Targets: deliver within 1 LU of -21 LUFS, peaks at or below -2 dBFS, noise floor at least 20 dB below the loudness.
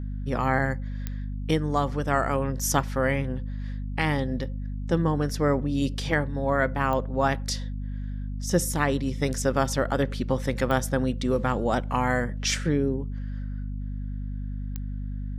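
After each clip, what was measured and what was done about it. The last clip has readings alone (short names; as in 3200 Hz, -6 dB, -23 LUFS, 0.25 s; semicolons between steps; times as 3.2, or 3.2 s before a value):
clicks 4; hum 50 Hz; harmonics up to 250 Hz; hum level -29 dBFS; loudness -27.0 LUFS; peak -8.5 dBFS; loudness target -21.0 LUFS
-> de-click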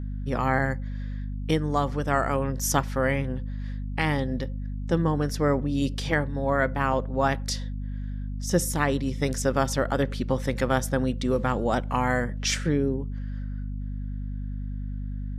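clicks 0; hum 50 Hz; harmonics up to 250 Hz; hum level -29 dBFS
-> notches 50/100/150/200/250 Hz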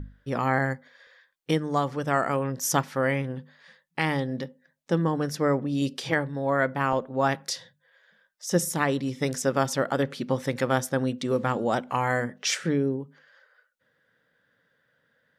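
hum none; loudness -27.0 LUFS; peak -9.0 dBFS; loudness target -21.0 LUFS
-> gain +6 dB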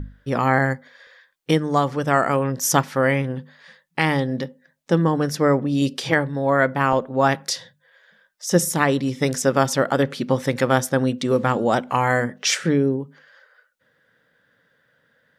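loudness -21.0 LUFS; peak -3.0 dBFS; noise floor -66 dBFS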